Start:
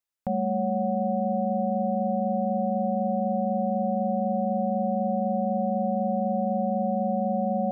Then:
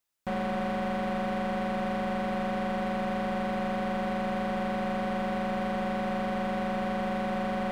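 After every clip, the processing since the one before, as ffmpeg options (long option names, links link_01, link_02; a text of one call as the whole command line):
ffmpeg -i in.wav -filter_complex "[0:a]asplit=2[link_01][link_02];[link_02]alimiter=level_in=1.5dB:limit=-24dB:level=0:latency=1,volume=-1.5dB,volume=0dB[link_03];[link_01][link_03]amix=inputs=2:normalize=0,asoftclip=type=hard:threshold=-29dB" out.wav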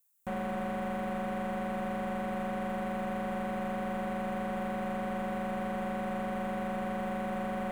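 ffmpeg -i in.wav -filter_complex "[0:a]acrossover=split=3100[link_01][link_02];[link_02]acompressor=threshold=-58dB:ratio=4:attack=1:release=60[link_03];[link_01][link_03]amix=inputs=2:normalize=0,aexciter=amount=5.6:drive=4:freq=6800,volume=-4dB" out.wav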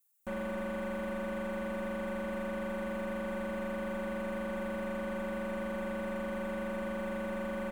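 ffmpeg -i in.wav -af "aecho=1:1:3.4:0.83,volume=-3.5dB" out.wav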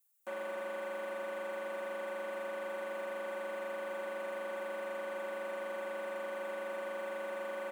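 ffmpeg -i in.wav -af "highpass=frequency=360:width=0.5412,highpass=frequency=360:width=1.3066,volume=-1dB" out.wav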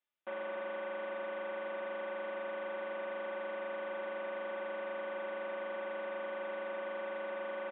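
ffmpeg -i in.wav -af "aresample=8000,aresample=44100" out.wav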